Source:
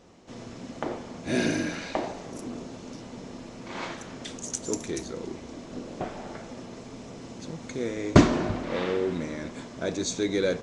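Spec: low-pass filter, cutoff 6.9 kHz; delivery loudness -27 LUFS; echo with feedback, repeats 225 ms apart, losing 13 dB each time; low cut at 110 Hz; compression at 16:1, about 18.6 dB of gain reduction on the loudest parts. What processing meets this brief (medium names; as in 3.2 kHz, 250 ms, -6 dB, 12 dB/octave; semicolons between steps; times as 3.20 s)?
high-pass 110 Hz; low-pass 6.9 kHz; compression 16:1, threshold -29 dBFS; feedback delay 225 ms, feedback 22%, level -13 dB; trim +9.5 dB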